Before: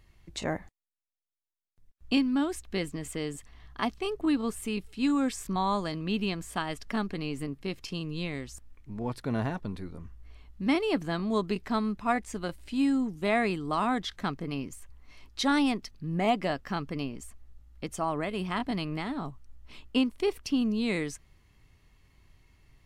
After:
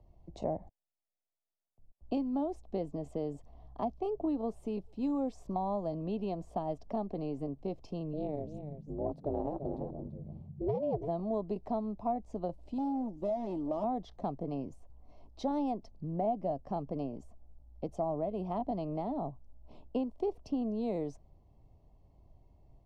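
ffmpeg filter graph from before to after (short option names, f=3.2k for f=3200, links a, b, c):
-filter_complex "[0:a]asettb=1/sr,asplit=3[a][b][c];[a]atrim=end=8.134[d];[b]atrim=start=8.13:end=11.08,asetpts=PTS-STARTPTS,afade=t=in:d=0.004:c=qsin,afade=t=out:st=2.946:d=0.004:c=qsin,tiltshelf=f=720:g=4.5,aeval=exprs='val(0)*sin(2*PI*150*n/s)':c=same,aecho=1:1:338:0.266,atrim=end_sample=130095[e];[c]atrim=start=11.076[f];[d][e]acrossfade=d=0.004:c1=hsin:c2=qsin[g];[g][f]acrossfade=d=0.004:c1=qsin:c2=hsin,asettb=1/sr,asplit=3[h][i][j];[h]atrim=end=12.784[k];[i]atrim=start=12.78:end=13.84,asetpts=PTS-STARTPTS,afade=t=in:d=0.004:c=qsin,afade=t=out:st=1.056:d=0.004:c=qsin,volume=30.5dB,asoftclip=hard,volume=-30.5dB,aecho=1:1:3.4:0.5,atrim=end_sample=46746[l];[j]atrim=start=13.836[m];[k][l]acrossfade=d=0.004:c1=hsin:c2=qsin[n];[n][m]acrossfade=d=0.004:c1=qsin:c2=hsin,firequalizer=gain_entry='entry(420,0);entry(660,9);entry(1500,-26);entry(2800,-20);entry(5700,-15);entry(8600,-22)':delay=0.05:min_phase=1,acrossover=split=100|330[o][p][q];[o]acompressor=threshold=-49dB:ratio=4[r];[p]acompressor=threshold=-40dB:ratio=4[s];[q]acompressor=threshold=-33dB:ratio=4[t];[r][s][t]amix=inputs=3:normalize=0,highshelf=f=9.7k:g=-12"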